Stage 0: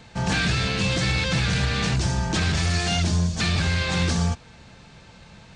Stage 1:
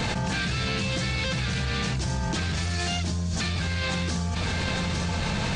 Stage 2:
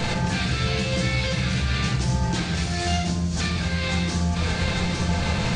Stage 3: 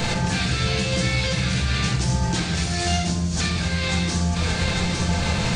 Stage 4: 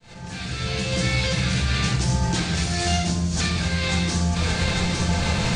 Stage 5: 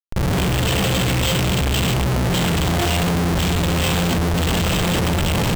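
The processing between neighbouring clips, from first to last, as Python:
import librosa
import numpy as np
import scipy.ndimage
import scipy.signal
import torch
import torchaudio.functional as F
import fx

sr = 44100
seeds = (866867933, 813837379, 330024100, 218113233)

y1 = x + 10.0 ** (-23.5 / 20.0) * np.pad(x, (int(857 * sr / 1000.0), 0))[:len(x)]
y1 = fx.env_flatten(y1, sr, amount_pct=100)
y1 = y1 * librosa.db_to_amplitude(-8.0)
y2 = fx.room_shoebox(y1, sr, seeds[0], volume_m3=170.0, walls='mixed', distance_m=0.79)
y3 = fx.high_shelf(y2, sr, hz=7100.0, db=8.5)
y3 = y3 * librosa.db_to_amplitude(1.0)
y4 = fx.fade_in_head(y3, sr, length_s=1.11)
y5 = fx.curve_eq(y4, sr, hz=(340.0, 970.0, 1700.0, 3100.0, 4400.0, 7700.0), db=(0, -4, -26, 10, -17, -21))
y5 = np.repeat(y5[::4], 4)[:len(y5)]
y5 = fx.schmitt(y5, sr, flips_db=-35.0)
y5 = y5 * librosa.db_to_amplitude(5.0)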